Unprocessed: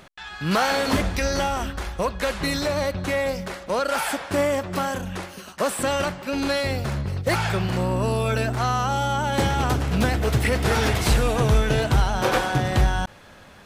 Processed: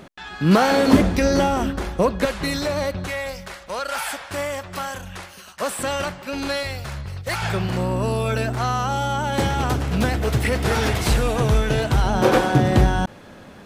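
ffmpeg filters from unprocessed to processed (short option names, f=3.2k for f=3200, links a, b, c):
-af "asetnsamples=n=441:p=0,asendcmd='2.25 equalizer g 1;3.07 equalizer g -10;5.62 equalizer g -3;6.63 equalizer g -11;7.42 equalizer g 1;12.04 equalizer g 9.5',equalizer=f=270:t=o:w=2.4:g=10.5"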